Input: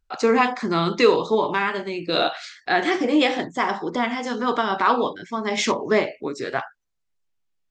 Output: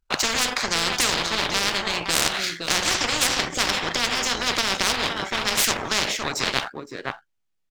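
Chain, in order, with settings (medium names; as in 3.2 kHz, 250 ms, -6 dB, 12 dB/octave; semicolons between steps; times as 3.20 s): delay 516 ms -15 dB; power-law waveshaper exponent 1.4; spectrum-flattening compressor 10:1; trim +3.5 dB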